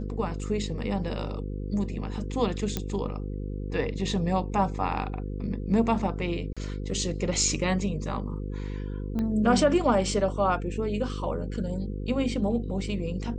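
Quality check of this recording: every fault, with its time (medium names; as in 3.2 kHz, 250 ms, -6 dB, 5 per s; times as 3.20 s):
buzz 50 Hz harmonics 10 -33 dBFS
2.77 s: pop -13 dBFS
6.53–6.57 s: dropout 36 ms
9.19 s: pop -20 dBFS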